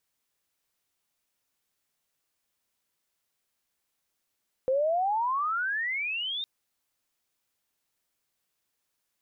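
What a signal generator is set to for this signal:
pitch glide with a swell sine, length 1.76 s, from 508 Hz, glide +34.5 semitones, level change −8 dB, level −22 dB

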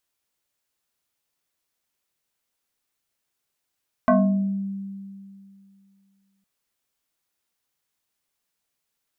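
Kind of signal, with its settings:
two-operator FM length 2.36 s, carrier 196 Hz, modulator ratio 2.25, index 2.5, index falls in 0.74 s exponential, decay 2.50 s, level −12.5 dB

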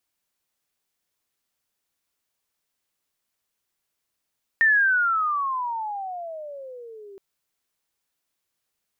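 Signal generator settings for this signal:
pitch glide with a swell sine, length 2.57 s, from 1,830 Hz, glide −27 semitones, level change −26.5 dB, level −14 dB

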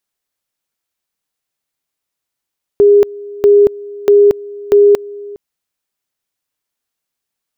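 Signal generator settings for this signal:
tone at two levels in turn 408 Hz −3.5 dBFS, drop 21.5 dB, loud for 0.23 s, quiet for 0.41 s, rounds 4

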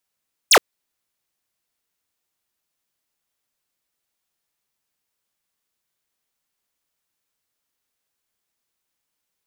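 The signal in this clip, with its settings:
single falling chirp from 10,000 Hz, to 330 Hz, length 0.07 s square, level −10.5 dB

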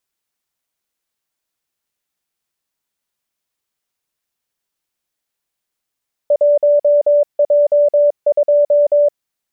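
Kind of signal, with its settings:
Morse code "1J2" 22 words per minute 584 Hz −8 dBFS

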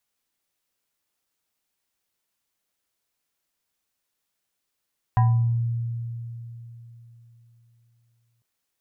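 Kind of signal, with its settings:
two-operator FM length 3.25 s, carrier 117 Hz, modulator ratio 7.49, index 0.7, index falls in 0.57 s exponential, decay 3.60 s, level −14 dB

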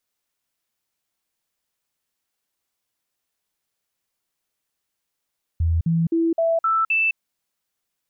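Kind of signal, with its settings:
stepped sweep 82.7 Hz up, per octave 1, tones 6, 0.21 s, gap 0.05 s −16.5 dBFS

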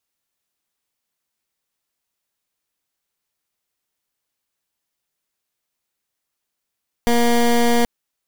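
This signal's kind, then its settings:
pulse wave 237 Hz, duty 18% −15 dBFS 0.78 s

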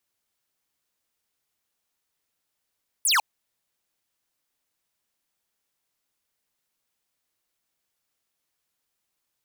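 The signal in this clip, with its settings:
single falling chirp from 12,000 Hz, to 770 Hz, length 0.15 s square, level −20 dB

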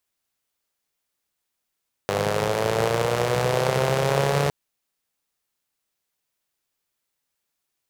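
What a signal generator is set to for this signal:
pulse-train model of a four-cylinder engine, changing speed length 2.41 s, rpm 3,000, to 4,300, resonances 150/470 Hz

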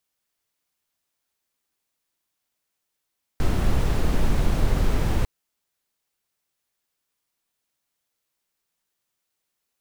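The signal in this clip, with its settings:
noise brown, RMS −19 dBFS 1.85 s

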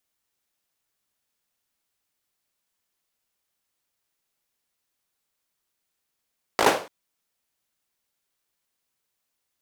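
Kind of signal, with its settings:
synth clap length 0.29 s, bursts 5, apart 18 ms, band 560 Hz, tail 0.38 s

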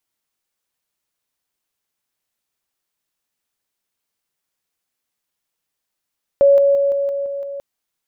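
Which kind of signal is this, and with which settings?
level staircase 560 Hz −7.5 dBFS, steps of −3 dB, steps 7, 0.17 s 0.00 s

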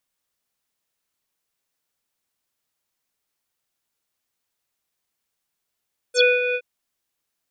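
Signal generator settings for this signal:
subtractive voice square B4 24 dB per octave, low-pass 2,700 Hz, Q 12, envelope 2 octaves, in 0.08 s, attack 62 ms, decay 0.20 s, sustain −8.5 dB, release 0.06 s, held 0.41 s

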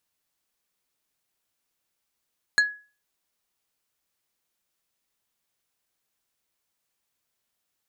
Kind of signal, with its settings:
struck wood plate, lowest mode 1,680 Hz, decay 0.35 s, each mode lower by 6 dB, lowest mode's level −13 dB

